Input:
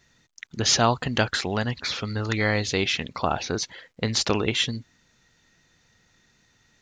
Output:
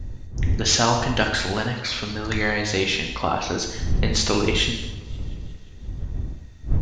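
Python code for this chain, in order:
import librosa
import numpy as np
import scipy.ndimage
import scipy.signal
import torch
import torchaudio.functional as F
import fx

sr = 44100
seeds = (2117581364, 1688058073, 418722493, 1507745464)

y = fx.dmg_wind(x, sr, seeds[0], corner_hz=82.0, level_db=-30.0)
y = fx.rev_gated(y, sr, seeds[1], gate_ms=320, shape='falling', drr_db=1.5)
y = fx.echo_warbled(y, sr, ms=177, feedback_pct=69, rate_hz=2.8, cents=92, wet_db=-23.5)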